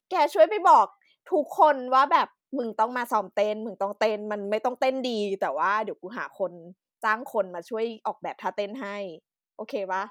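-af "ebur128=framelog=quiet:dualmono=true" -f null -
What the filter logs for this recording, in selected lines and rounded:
Integrated loudness:
  I:         -22.6 LUFS
  Threshold: -32.9 LUFS
Loudness range:
  LRA:         8.6 LU
  Threshold: -43.8 LUFS
  LRA low:   -28.2 LUFS
  LRA high:  -19.6 LUFS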